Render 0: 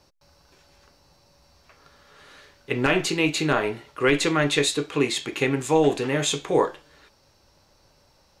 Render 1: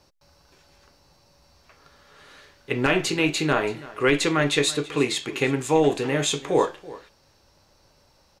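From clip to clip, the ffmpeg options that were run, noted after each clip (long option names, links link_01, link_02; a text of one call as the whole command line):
ffmpeg -i in.wav -af "aecho=1:1:331:0.112" out.wav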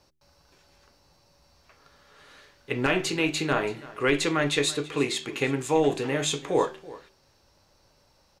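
ffmpeg -i in.wav -af "bandreject=frequency=76.83:width_type=h:width=4,bandreject=frequency=153.66:width_type=h:width=4,bandreject=frequency=230.49:width_type=h:width=4,bandreject=frequency=307.32:width_type=h:width=4,bandreject=frequency=384.15:width_type=h:width=4,volume=-3dB" out.wav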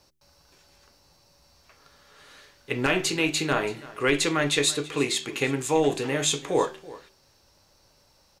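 ffmpeg -i in.wav -af "highshelf=frequency=4300:gain=6.5" out.wav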